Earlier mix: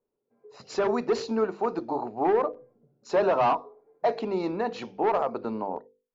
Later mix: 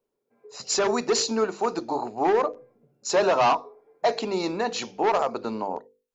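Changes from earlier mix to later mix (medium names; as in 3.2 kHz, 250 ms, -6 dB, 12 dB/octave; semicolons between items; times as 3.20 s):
background: remove distance through air 500 m; master: remove tape spacing loss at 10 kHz 30 dB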